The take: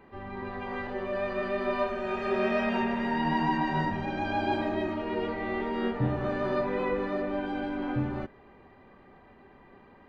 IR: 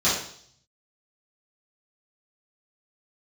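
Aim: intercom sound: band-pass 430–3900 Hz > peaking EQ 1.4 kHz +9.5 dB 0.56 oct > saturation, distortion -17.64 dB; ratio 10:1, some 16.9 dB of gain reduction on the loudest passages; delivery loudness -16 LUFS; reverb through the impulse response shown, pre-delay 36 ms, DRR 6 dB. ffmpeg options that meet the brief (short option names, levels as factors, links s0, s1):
-filter_complex "[0:a]acompressor=threshold=0.00891:ratio=10,asplit=2[s0][s1];[1:a]atrim=start_sample=2205,adelay=36[s2];[s1][s2]afir=irnorm=-1:irlink=0,volume=0.0841[s3];[s0][s3]amix=inputs=2:normalize=0,highpass=430,lowpass=3900,equalizer=f=1400:t=o:w=0.56:g=9.5,asoftclip=threshold=0.0133,volume=29.9"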